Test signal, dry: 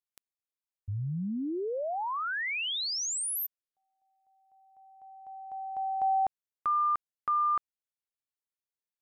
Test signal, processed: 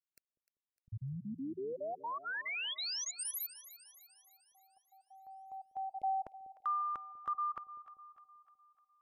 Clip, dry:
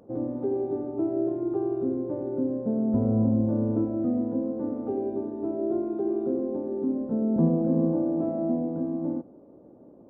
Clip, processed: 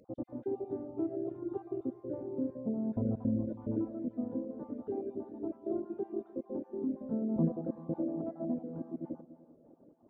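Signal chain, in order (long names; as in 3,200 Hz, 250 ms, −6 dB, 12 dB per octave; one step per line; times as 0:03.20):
time-frequency cells dropped at random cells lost 27%
reverb reduction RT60 1.3 s
echo with a time of its own for lows and highs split 570 Hz, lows 195 ms, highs 302 ms, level −15 dB
level −6 dB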